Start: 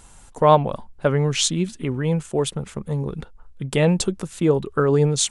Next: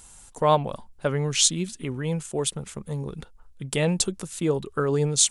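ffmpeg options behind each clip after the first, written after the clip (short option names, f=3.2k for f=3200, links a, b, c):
-af "highshelf=f=3.7k:g=11,volume=-6dB"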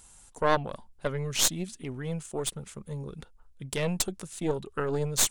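-af "aeval=exprs='0.891*(cos(1*acos(clip(val(0)/0.891,-1,1)))-cos(1*PI/2))+0.158*(cos(6*acos(clip(val(0)/0.891,-1,1)))-cos(6*PI/2))':c=same,volume=-5.5dB"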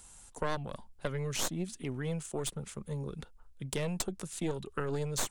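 -filter_complex "[0:a]acrossover=split=230|1600|5600[a][b][c][d];[a]acompressor=threshold=-35dB:ratio=4[e];[b]acompressor=threshold=-35dB:ratio=4[f];[c]acompressor=threshold=-43dB:ratio=4[g];[d]acompressor=threshold=-38dB:ratio=4[h];[e][f][g][h]amix=inputs=4:normalize=0"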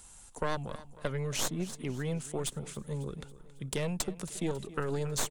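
-af "aecho=1:1:274|548|822|1096|1370:0.141|0.0763|0.0412|0.0222|0.012,volume=1dB"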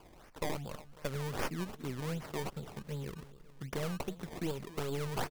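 -af "acrusher=samples=22:mix=1:aa=0.000001:lfo=1:lforange=22:lforate=2.6,volume=-3.5dB"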